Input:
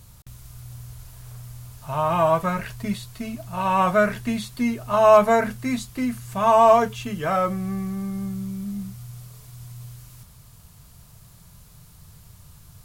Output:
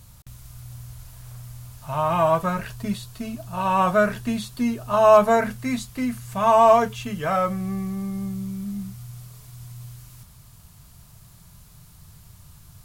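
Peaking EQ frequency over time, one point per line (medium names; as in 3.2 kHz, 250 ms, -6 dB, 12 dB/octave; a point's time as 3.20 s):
peaking EQ -6 dB 0.29 oct
410 Hz
from 2.35 s 2.1 kHz
from 5.37 s 350 Hz
from 7.61 s 1.5 kHz
from 8.47 s 490 Hz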